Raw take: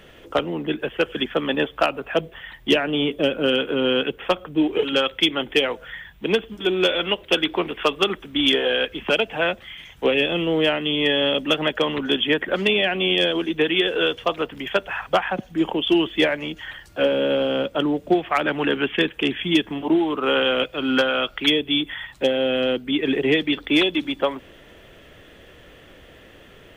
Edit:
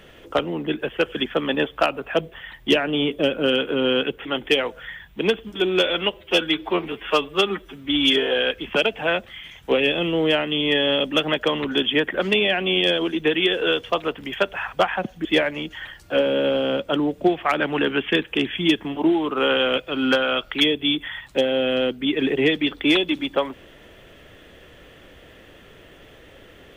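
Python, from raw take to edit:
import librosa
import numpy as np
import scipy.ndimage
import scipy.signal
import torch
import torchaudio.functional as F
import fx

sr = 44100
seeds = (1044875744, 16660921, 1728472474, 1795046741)

y = fx.edit(x, sr, fx.cut(start_s=4.25, length_s=1.05),
    fx.stretch_span(start_s=7.19, length_s=1.42, factor=1.5),
    fx.cut(start_s=15.59, length_s=0.52), tone=tone)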